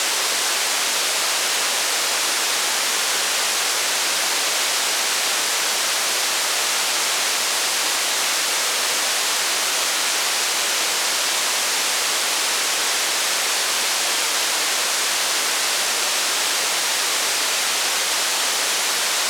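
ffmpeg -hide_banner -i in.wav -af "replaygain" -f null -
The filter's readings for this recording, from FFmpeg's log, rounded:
track_gain = +3.0 dB
track_peak = 0.323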